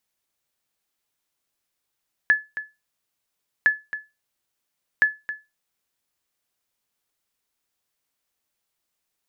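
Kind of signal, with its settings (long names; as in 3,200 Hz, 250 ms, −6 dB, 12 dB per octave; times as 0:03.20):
ping with an echo 1,720 Hz, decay 0.23 s, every 1.36 s, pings 3, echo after 0.27 s, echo −13 dB −9 dBFS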